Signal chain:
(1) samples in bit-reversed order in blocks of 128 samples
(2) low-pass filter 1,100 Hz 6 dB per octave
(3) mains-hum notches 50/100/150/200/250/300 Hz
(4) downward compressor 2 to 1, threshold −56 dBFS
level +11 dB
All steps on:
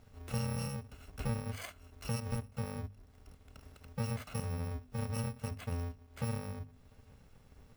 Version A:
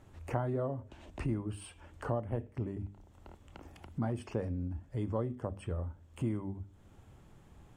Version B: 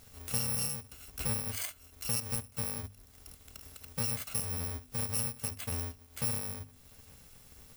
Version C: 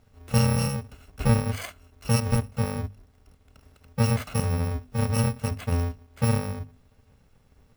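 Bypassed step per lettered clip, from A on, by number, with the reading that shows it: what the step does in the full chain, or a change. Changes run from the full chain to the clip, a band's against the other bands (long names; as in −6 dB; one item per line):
1, 8 kHz band −10.5 dB
2, 8 kHz band +16.0 dB
4, average gain reduction 9.5 dB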